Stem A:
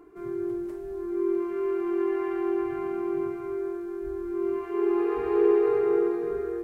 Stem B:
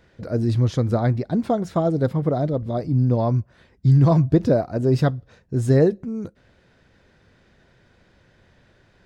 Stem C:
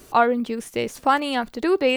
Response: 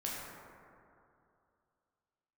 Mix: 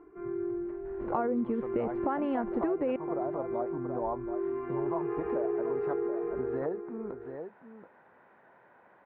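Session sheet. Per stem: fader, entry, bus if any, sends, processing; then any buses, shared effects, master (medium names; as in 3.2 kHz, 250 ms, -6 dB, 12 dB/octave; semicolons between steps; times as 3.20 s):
-2.5 dB, 0.00 s, no send, echo send -12 dB, none
-5.5 dB, 0.85 s, no send, echo send -11 dB, compression 2:1, threshold -31 dBFS, peak gain reduction 11 dB; high-pass 260 Hz 12 dB/octave; peaking EQ 910 Hz +14.5 dB 1.1 oct
-1.0 dB, 1.00 s, no send, no echo send, tilt shelf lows +8.5 dB, about 1.4 kHz; peak limiter -10.5 dBFS, peak gain reduction 8 dB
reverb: none
echo: delay 730 ms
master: low-pass 2.2 kHz 24 dB/octave; compression 4:1, threshold -29 dBFS, peak gain reduction 12.5 dB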